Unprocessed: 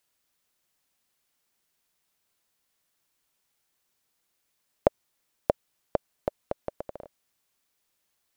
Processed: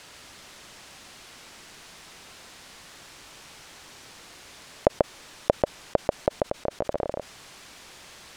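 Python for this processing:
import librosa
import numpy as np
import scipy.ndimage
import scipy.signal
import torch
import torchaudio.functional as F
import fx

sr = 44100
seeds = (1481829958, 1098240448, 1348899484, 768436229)

y = fx.level_steps(x, sr, step_db=13, at=(6.38, 6.84))
y = fx.air_absorb(y, sr, metres=70.0)
y = y + 10.0 ** (-4.0 / 20.0) * np.pad(y, (int(139 * sr / 1000.0), 0))[:len(y)]
y = fx.env_flatten(y, sr, amount_pct=50)
y = y * 10.0 ** (1.5 / 20.0)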